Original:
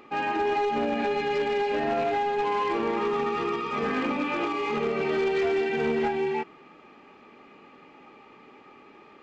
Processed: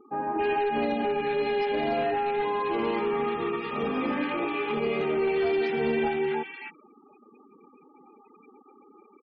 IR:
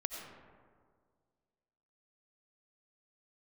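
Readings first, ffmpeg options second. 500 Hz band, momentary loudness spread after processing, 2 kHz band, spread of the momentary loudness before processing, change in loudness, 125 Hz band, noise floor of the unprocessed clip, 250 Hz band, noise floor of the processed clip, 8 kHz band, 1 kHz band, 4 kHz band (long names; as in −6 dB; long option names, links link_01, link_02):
0.0 dB, 4 LU, −1.5 dB, 3 LU, −0.5 dB, 0.0 dB, −52 dBFS, 0.0 dB, −57 dBFS, can't be measured, −1.5 dB, −1.5 dB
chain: -filter_complex "[0:a]afftfilt=real='re*gte(hypot(re,im),0.00891)':imag='im*gte(hypot(re,im),0.00891)':win_size=1024:overlap=0.75,acrossover=split=1300[link_01][link_02];[link_02]adelay=270[link_03];[link_01][link_03]amix=inputs=2:normalize=0"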